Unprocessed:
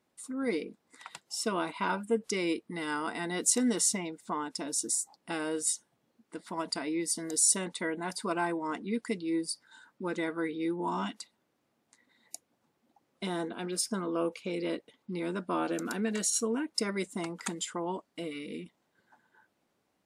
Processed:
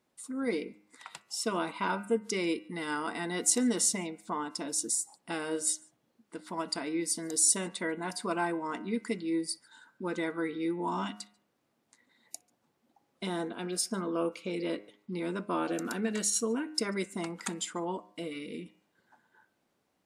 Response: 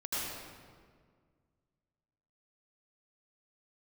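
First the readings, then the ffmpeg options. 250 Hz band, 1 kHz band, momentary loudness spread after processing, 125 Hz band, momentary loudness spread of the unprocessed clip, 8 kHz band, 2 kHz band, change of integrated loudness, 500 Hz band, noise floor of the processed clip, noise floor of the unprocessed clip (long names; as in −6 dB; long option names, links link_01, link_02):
0.0 dB, 0.0 dB, 13 LU, 0.0 dB, 13 LU, 0.0 dB, −0.5 dB, 0.0 dB, 0.0 dB, −77 dBFS, −77 dBFS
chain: -filter_complex "[0:a]bandreject=frequency=103:width_type=h:width=4,bandreject=frequency=206:width_type=h:width=4,bandreject=frequency=309:width_type=h:width=4,bandreject=frequency=412:width_type=h:width=4,bandreject=frequency=515:width_type=h:width=4,bandreject=frequency=618:width_type=h:width=4,bandreject=frequency=721:width_type=h:width=4,bandreject=frequency=824:width_type=h:width=4,bandreject=frequency=927:width_type=h:width=4,bandreject=frequency=1030:width_type=h:width=4,bandreject=frequency=1133:width_type=h:width=4,bandreject=frequency=1236:width_type=h:width=4,bandreject=frequency=1339:width_type=h:width=4,bandreject=frequency=1442:width_type=h:width=4,bandreject=frequency=1545:width_type=h:width=4,bandreject=frequency=1648:width_type=h:width=4,bandreject=frequency=1751:width_type=h:width=4,bandreject=frequency=1854:width_type=h:width=4,bandreject=frequency=1957:width_type=h:width=4,bandreject=frequency=2060:width_type=h:width=4,bandreject=frequency=2163:width_type=h:width=4,bandreject=frequency=2266:width_type=h:width=4,bandreject=frequency=2369:width_type=h:width=4,bandreject=frequency=2472:width_type=h:width=4,bandreject=frequency=2575:width_type=h:width=4,bandreject=frequency=2678:width_type=h:width=4,bandreject=frequency=2781:width_type=h:width=4,bandreject=frequency=2884:width_type=h:width=4,asplit=2[link_01][link_02];[1:a]atrim=start_sample=2205,atrim=end_sample=3969,adelay=61[link_03];[link_02][link_03]afir=irnorm=-1:irlink=0,volume=-26dB[link_04];[link_01][link_04]amix=inputs=2:normalize=0"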